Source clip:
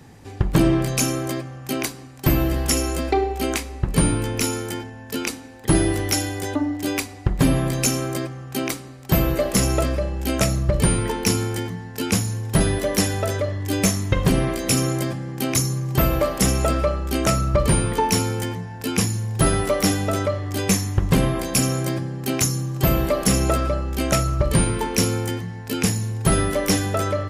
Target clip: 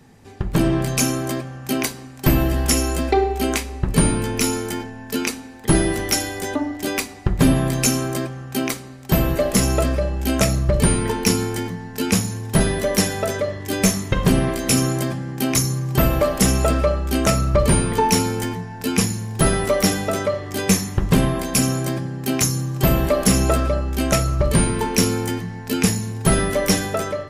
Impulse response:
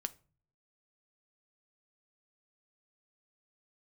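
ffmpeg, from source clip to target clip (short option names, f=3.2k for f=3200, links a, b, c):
-filter_complex "[0:a]dynaudnorm=f=420:g=3:m=11.5dB[a];[1:a]atrim=start_sample=2205,asetrate=57330,aresample=44100[b];[a][b]afir=irnorm=-1:irlink=0"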